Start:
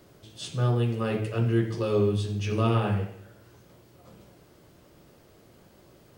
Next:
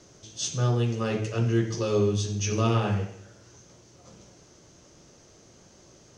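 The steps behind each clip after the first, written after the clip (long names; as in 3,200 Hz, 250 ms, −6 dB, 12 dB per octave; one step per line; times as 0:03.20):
low-pass with resonance 6,200 Hz, resonance Q 7.9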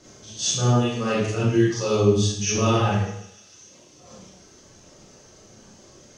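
feedback echo with a high-pass in the loop 150 ms, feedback 79%, high-pass 1,200 Hz, level −14 dB
reverb reduction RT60 1.4 s
four-comb reverb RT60 0.66 s, combs from 29 ms, DRR −7.5 dB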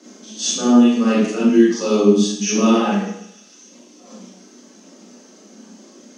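Butterworth high-pass 180 Hz 96 dB per octave
parametric band 250 Hz +12.5 dB 0.56 octaves
level +2.5 dB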